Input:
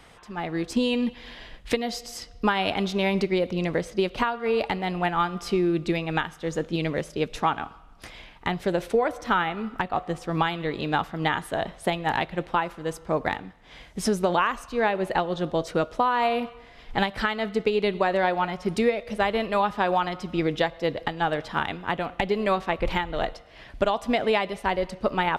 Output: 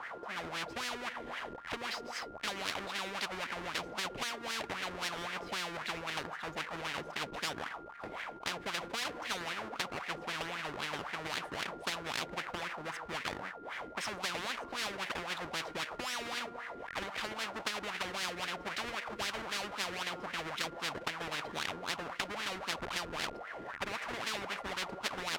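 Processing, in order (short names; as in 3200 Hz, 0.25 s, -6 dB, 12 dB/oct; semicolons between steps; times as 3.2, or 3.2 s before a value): half-waves squared off; wah 3.8 Hz 330–1900 Hz, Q 6.3; whine 1400 Hz -61 dBFS; spectral compressor 10:1; gain -4.5 dB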